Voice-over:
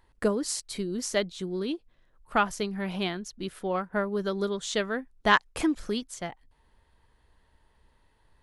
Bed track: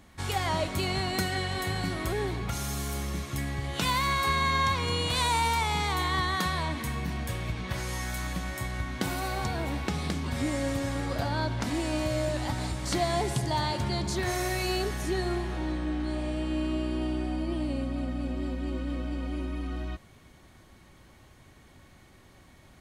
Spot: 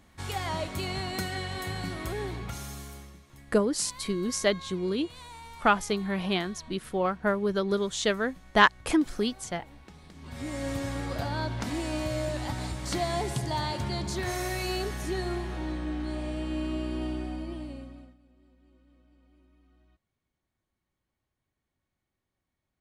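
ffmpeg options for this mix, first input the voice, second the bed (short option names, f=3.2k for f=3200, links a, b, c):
-filter_complex "[0:a]adelay=3300,volume=2dB[a];[1:a]volume=14.5dB,afade=t=out:st=2.37:d=0.82:silence=0.149624,afade=t=in:st=10.13:d=0.61:silence=0.125893,afade=t=out:st=17.07:d=1.1:silence=0.0421697[b];[a][b]amix=inputs=2:normalize=0"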